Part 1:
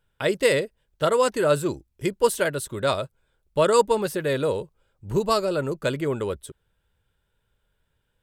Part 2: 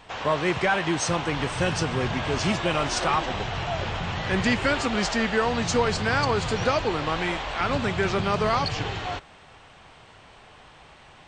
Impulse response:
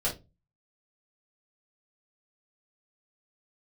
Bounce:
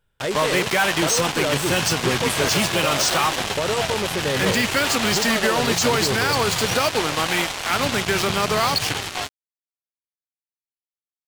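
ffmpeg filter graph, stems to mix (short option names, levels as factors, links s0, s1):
-filter_complex "[0:a]alimiter=limit=0.133:level=0:latency=1,volume=1.12[s0];[1:a]highpass=92,highshelf=f=2600:g=10.5,acrusher=bits=3:mix=0:aa=0.5,adelay=100,volume=1.41[s1];[s0][s1]amix=inputs=2:normalize=0,alimiter=limit=0.316:level=0:latency=1:release=13"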